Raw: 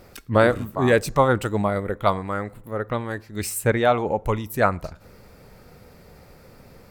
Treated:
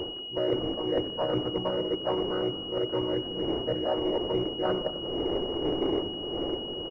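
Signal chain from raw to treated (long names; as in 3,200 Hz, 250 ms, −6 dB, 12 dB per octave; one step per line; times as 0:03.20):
channel vocoder with a chord as carrier major triad, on B2
wind on the microphone 300 Hz −30 dBFS
low shelf with overshoot 270 Hz −9 dB, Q 3
mains-hum notches 50/100/150/200/250/300/350/400 Hz
reversed playback
downward compressor 10 to 1, threshold −31 dBFS, peak gain reduction 19 dB
reversed playback
echo with shifted repeats 93 ms, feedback 61%, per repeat −47 Hz, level −13.5 dB
on a send at −16 dB: convolution reverb RT60 2.6 s, pre-delay 7 ms
on the sum: regular buffer underruns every 0.12 s, samples 256, repeat, from 0:00.37
switching amplifier with a slow clock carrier 2,900 Hz
level +5.5 dB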